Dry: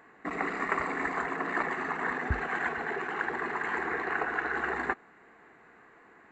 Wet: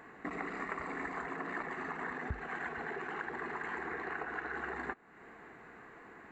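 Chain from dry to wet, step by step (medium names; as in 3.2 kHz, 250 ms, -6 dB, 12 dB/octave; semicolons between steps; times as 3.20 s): bass shelf 240 Hz +5 dB; compression 3:1, threshold -43 dBFS, peak gain reduction 17 dB; trim +2.5 dB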